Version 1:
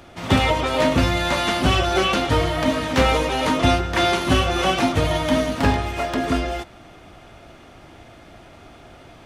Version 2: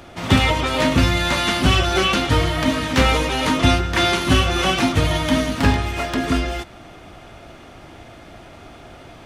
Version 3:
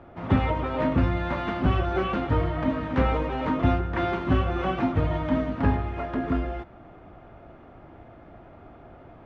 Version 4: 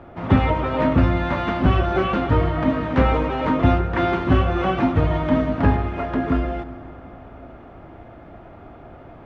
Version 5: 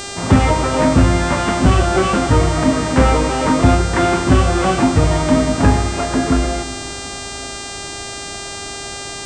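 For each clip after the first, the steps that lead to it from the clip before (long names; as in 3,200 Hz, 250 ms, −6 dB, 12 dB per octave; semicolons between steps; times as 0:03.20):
dynamic equaliser 620 Hz, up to −6 dB, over −34 dBFS, Q 0.89; level +3.5 dB
low-pass filter 1,300 Hz 12 dB per octave; level −5.5 dB
convolution reverb RT60 3.8 s, pre-delay 103 ms, DRR 15 dB; level +5.5 dB
hum with harmonics 400 Hz, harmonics 22, −35 dBFS −1 dB per octave; soft clipping −5 dBFS, distortion −25 dB; level +5.5 dB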